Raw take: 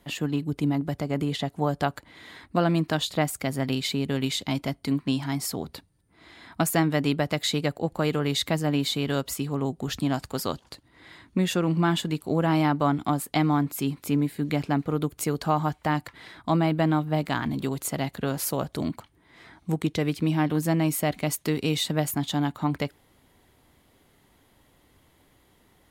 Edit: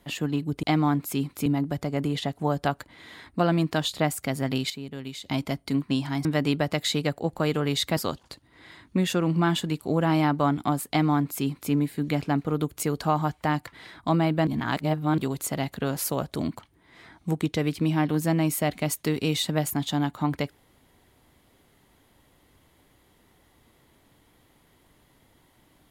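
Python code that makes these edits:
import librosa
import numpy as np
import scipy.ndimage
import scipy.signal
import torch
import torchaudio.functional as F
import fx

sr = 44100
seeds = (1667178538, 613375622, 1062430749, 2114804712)

y = fx.edit(x, sr, fx.clip_gain(start_s=3.87, length_s=0.56, db=-10.0),
    fx.cut(start_s=5.42, length_s=1.42),
    fx.cut(start_s=8.56, length_s=1.82),
    fx.duplicate(start_s=13.3, length_s=0.83, to_s=0.63),
    fx.reverse_span(start_s=16.88, length_s=0.71), tone=tone)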